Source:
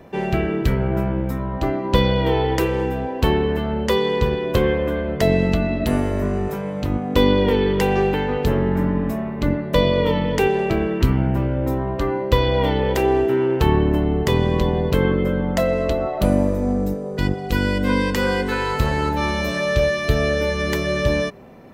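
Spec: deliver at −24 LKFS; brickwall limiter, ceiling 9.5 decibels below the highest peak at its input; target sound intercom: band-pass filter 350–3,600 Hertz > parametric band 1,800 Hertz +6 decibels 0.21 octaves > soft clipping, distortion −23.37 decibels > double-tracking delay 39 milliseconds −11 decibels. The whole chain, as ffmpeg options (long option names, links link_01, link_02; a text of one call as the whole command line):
ffmpeg -i in.wav -filter_complex "[0:a]alimiter=limit=-10.5dB:level=0:latency=1,highpass=350,lowpass=3600,equalizer=frequency=1800:width_type=o:width=0.21:gain=6,asoftclip=threshold=-13.5dB,asplit=2[link_01][link_02];[link_02]adelay=39,volume=-11dB[link_03];[link_01][link_03]amix=inputs=2:normalize=0,volume=0.5dB" out.wav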